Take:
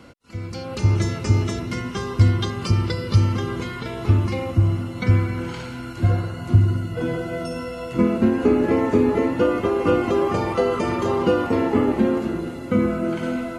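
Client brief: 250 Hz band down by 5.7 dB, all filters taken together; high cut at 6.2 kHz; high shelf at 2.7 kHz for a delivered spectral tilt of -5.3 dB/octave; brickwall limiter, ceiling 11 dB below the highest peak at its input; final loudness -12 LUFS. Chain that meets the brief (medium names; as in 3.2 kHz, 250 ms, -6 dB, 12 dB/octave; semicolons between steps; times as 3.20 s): low-pass 6.2 kHz; peaking EQ 250 Hz -7.5 dB; treble shelf 2.7 kHz +8 dB; trim +13.5 dB; peak limiter -1.5 dBFS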